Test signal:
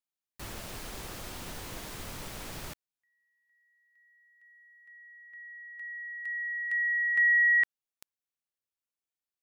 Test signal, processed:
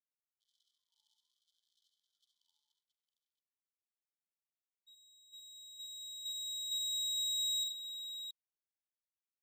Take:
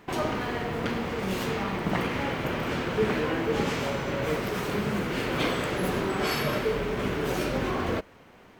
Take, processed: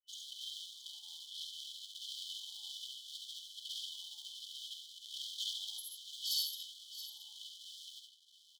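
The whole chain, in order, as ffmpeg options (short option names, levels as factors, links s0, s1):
-af "acompressor=threshold=0.0398:ratio=6:attack=1.6:release=65:knee=1:detection=peak,afftfilt=real='re*gte(hypot(re,im),0.0224)':imag='im*gte(hypot(re,im),0.0224)':win_size=1024:overlap=0.75,aeval=exprs='max(val(0),0)':c=same,afftfilt=real='re*(1-between(b*sr/4096,860,3000))':imag='im*(1-between(b*sr/4096,860,3000))':win_size=4096:overlap=0.75,aecho=1:1:48|58|69|88|672:0.266|0.15|0.562|0.211|0.266,afftfilt=real='re*gte(b*sr/1024,870*pow(1900/870,0.5+0.5*sin(2*PI*0.65*pts/sr)))':imag='im*gte(b*sr/1024,870*pow(1900/870,0.5+0.5*sin(2*PI*0.65*pts/sr)))':win_size=1024:overlap=0.75,volume=2.99"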